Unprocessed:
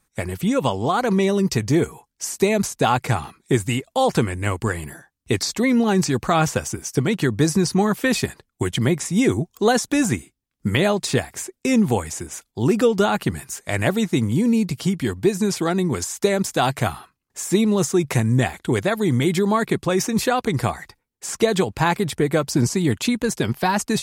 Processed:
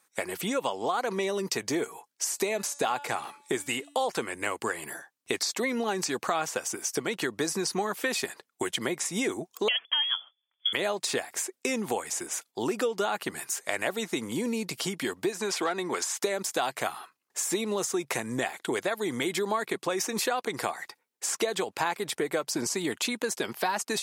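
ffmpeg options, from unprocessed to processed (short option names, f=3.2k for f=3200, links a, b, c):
-filter_complex "[0:a]asettb=1/sr,asplit=3[a][b][c];[a]atrim=end=2.344[d];[b]atrim=start=2.34:end=3.97,asetpts=PTS-STARTPTS,afade=t=in:d=0.004:c=qsin,afade=t=out:st=1.626:d=0.004:c=qsin,bandreject=f=287.4:t=h:w=4,bandreject=f=574.8:t=h:w=4,bandreject=f=862.2:t=h:w=4,bandreject=f=1.1496k:t=h:w=4,bandreject=f=1.437k:t=h:w=4,bandreject=f=1.7244k:t=h:w=4,bandreject=f=2.0118k:t=h:w=4,bandreject=f=2.2992k:t=h:w=4,bandreject=f=2.5866k:t=h:w=4,bandreject=f=2.874k:t=h:w=4,bandreject=f=3.1614k:t=h:w=4,bandreject=f=3.4488k:t=h:w=4,bandreject=f=3.7362k:t=h:w=4,bandreject=f=4.0236k:t=h:w=4,bandreject=f=4.311k:t=h:w=4,bandreject=f=4.5984k:t=h:w=4,bandreject=f=4.8858k:t=h:w=4,bandreject=f=5.1732k:t=h:w=4,bandreject=f=5.4606k:t=h:w=4,bandreject=f=5.748k:t=h:w=4,bandreject=f=6.0354k:t=h:w=4,bandreject=f=6.3228k:t=h:w=4,bandreject=f=6.6102k:t=h:w=4,bandreject=f=6.8976k:t=h:w=4,bandreject=f=7.185k:t=h:w=4,bandreject=f=7.4724k:t=h:w=4,bandreject=f=7.7598k:t=h:w=4,bandreject=f=8.0472k:t=h:w=4,bandreject=f=8.3346k:t=h:w=4,bandreject=f=8.622k:t=h:w=4,bandreject=f=8.9094k:t=h:w=4,bandreject=f=9.1968k:t=h:w=4,bandreject=f=9.4842k:t=h:w=4,bandreject=f=9.7716k:t=h:w=4,bandreject=f=10.059k:t=h:w=4,bandreject=f=10.3464k:t=h:w=4,bandreject=f=10.6338k:t=h:w=4[e];[c]atrim=start=3.966[f];[d][e]acrossfade=d=0.004:c1=hsin:c2=qsin[g];[g][f]acrossfade=d=0.004:c1=qsin:c2=hsin,asettb=1/sr,asplit=3[h][i][j];[h]atrim=end=9.684[k];[i]atrim=start=9.68:end=10.73,asetpts=PTS-STARTPTS,afade=t=in:d=0.004:c=qsin,afade=t=out:st=1.046:d=0.004:c=qsin,lowpass=f=3k:t=q:w=0.5098,lowpass=f=3k:t=q:w=0.6013,lowpass=f=3k:t=q:w=0.9,lowpass=f=3k:t=q:w=2.563,afreqshift=-3500[l];[j]atrim=start=10.726[m];[k][l]acrossfade=d=0.004:c1=hsin:c2=qsin[n];[n][m]acrossfade=d=0.004:c1=qsin:c2=hsin,asettb=1/sr,asplit=3[o][p][q];[o]atrim=end=15.324[r];[p]atrim=start=15.32:end=16.19,asetpts=PTS-STARTPTS,afade=t=in:d=0.004:c=qsin,afade=t=out:st=0.866:d=0.004:c=qsin,asplit=2[s][t];[t]highpass=f=720:p=1,volume=10dB,asoftclip=type=tanh:threshold=-8.5dB[u];[s][u]amix=inputs=2:normalize=0,lowpass=f=3.4k:p=1,volume=-6dB[v];[q]atrim=start=16.186[w];[r][v]acrossfade=d=0.004:c1=hsin:c2=qsin[x];[x][w]acrossfade=d=0.004:c1=qsin:c2=hsin,highpass=430,acompressor=threshold=-30dB:ratio=3,volume=2dB"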